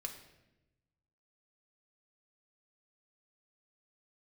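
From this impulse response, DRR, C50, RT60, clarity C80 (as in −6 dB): 2.0 dB, 8.5 dB, 0.95 s, 10.5 dB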